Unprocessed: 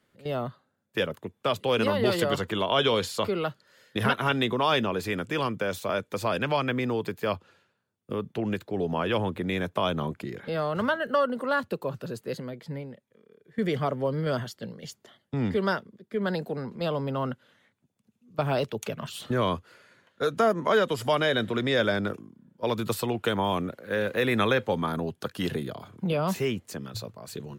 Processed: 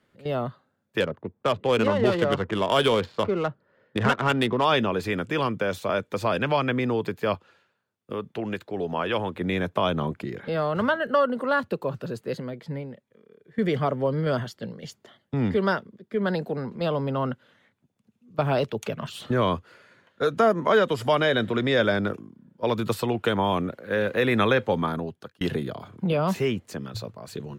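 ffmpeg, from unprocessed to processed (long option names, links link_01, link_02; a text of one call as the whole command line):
ffmpeg -i in.wav -filter_complex "[0:a]asettb=1/sr,asplit=3[link_01][link_02][link_03];[link_01]atrim=end=1.004[link_04];[link_02]atrim=start=1:end=4.65,asetpts=PTS-STARTPTS,afade=type=in:duration=0.004:curve=qsin,afade=type=out:start_time=3.646:duration=0.004:curve=qsin,adynamicsmooth=sensitivity=3.5:basefreq=1200[link_05];[link_03]atrim=start=4.646[link_06];[link_04][link_05]acrossfade=duration=0.004:curve1=hsin:curve2=qsin[link_07];[link_07][link_06]acrossfade=duration=0.004:curve1=qsin:curve2=hsin,asettb=1/sr,asplit=3[link_08][link_09][link_10];[link_08]atrim=end=7.354[link_11];[link_09]atrim=start=7.35:end=9.41,asetpts=PTS-STARTPTS,afade=type=in:duration=0.004:curve=qsin,afade=type=out:start_time=2.056:duration=0.004:curve=qsin,lowshelf=frequency=360:gain=-7.5[link_12];[link_10]atrim=start=9.406[link_13];[link_11][link_12]acrossfade=duration=0.004:curve1=hsin:curve2=qsin[link_14];[link_14][link_13]acrossfade=duration=0.004:curve1=qsin:curve2=hsin,asplit=2[link_15][link_16];[link_15]atrim=end=25.41,asetpts=PTS-STARTPTS,afade=type=out:start_time=24.84:duration=0.57[link_17];[link_16]atrim=start=25.41,asetpts=PTS-STARTPTS,afade=type=in:duration=0.004:curve=hsin[link_18];[link_17][link_18]concat=n=2:v=0:a=1,highshelf=frequency=5600:gain=-8.5,volume=3dB" out.wav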